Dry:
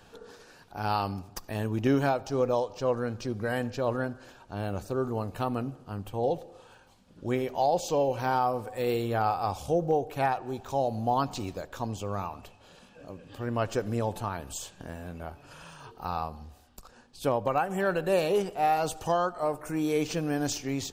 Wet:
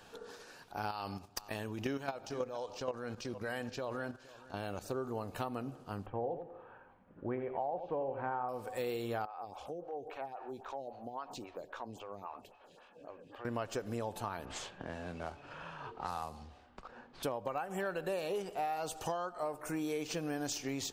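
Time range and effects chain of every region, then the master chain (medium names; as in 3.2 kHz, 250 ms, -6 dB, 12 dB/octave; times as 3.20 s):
0.91–4.85 s: level held to a coarse grid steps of 12 dB + peaking EQ 3.8 kHz +4 dB 2.8 oct + delay 466 ms -20 dB
6.06–8.49 s: low-pass 1.9 kHz 24 dB/octave + delay 87 ms -10.5 dB
9.25–13.45 s: tone controls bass -5 dB, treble -9 dB + compression 4:1, threshold -37 dBFS + lamp-driven phase shifter 3.7 Hz
14.45–17.23 s: CVSD coder 64 kbps + level-controlled noise filter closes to 1.4 kHz, open at -29.5 dBFS + three bands compressed up and down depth 40%
whole clip: bass shelf 200 Hz -8.5 dB; compression, threshold -34 dBFS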